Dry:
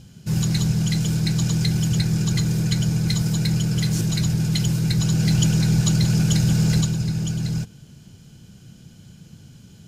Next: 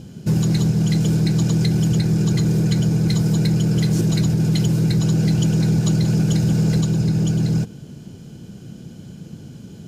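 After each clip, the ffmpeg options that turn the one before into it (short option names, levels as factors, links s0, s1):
-af "equalizer=f=360:t=o:w=2.6:g=12,acompressor=threshold=0.158:ratio=6,volume=1.19"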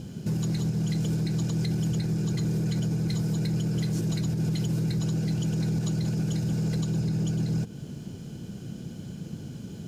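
-af "acrusher=bits=11:mix=0:aa=0.000001,alimiter=limit=0.106:level=0:latency=1:release=200,volume=0.891"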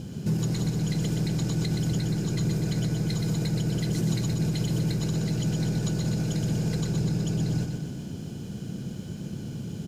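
-af "aecho=1:1:123|246|369|492|615|738|861|984:0.562|0.321|0.183|0.104|0.0594|0.0338|0.0193|0.011,volume=1.19"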